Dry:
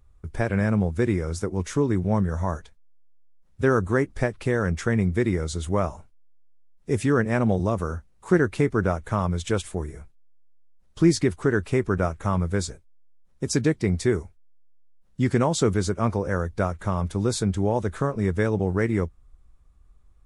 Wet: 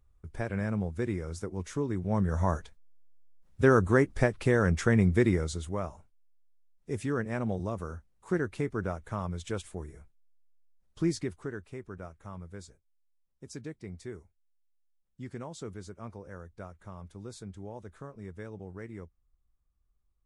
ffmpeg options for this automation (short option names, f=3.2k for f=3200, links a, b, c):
-af "volume=-1dB,afade=t=in:st=2.03:d=0.4:silence=0.398107,afade=t=out:st=5.25:d=0.46:silence=0.354813,afade=t=out:st=11.03:d=0.63:silence=0.334965"